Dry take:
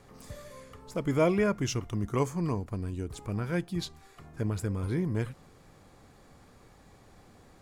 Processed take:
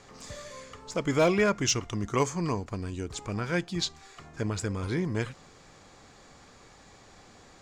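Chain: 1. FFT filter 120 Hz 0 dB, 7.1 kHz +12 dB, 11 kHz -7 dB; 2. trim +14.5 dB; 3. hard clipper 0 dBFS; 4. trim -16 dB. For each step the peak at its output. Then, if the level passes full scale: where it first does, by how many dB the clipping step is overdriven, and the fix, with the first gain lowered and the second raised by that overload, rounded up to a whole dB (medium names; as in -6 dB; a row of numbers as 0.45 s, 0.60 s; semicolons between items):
-7.5 dBFS, +7.0 dBFS, 0.0 dBFS, -16.0 dBFS; step 2, 7.0 dB; step 2 +7.5 dB, step 4 -9 dB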